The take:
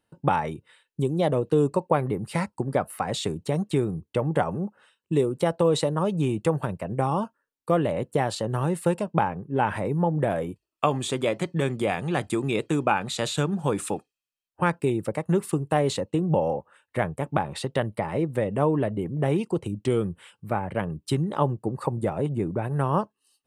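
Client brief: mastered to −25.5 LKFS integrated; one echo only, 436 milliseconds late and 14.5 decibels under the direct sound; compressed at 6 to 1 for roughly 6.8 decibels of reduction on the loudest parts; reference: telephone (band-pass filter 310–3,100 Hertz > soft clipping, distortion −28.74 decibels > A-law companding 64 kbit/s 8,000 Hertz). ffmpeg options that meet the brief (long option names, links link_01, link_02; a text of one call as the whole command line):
ffmpeg -i in.wav -af "acompressor=threshold=-25dB:ratio=6,highpass=310,lowpass=3100,aecho=1:1:436:0.188,asoftclip=threshold=-14dB,volume=9dB" -ar 8000 -c:a pcm_alaw out.wav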